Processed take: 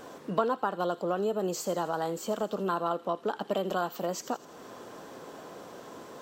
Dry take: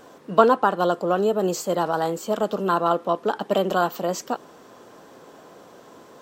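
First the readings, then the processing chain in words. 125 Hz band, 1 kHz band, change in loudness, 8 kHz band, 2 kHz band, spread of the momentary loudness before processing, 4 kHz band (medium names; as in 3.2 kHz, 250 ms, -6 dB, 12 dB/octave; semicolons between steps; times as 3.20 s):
-7.5 dB, -9.5 dB, -9.0 dB, -5.0 dB, -9.0 dB, 8 LU, -7.5 dB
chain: compression 2:1, threshold -36 dBFS, peak gain reduction 14.5 dB; feedback echo behind a high-pass 82 ms, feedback 54%, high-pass 2.8 kHz, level -12.5 dB; trim +1.5 dB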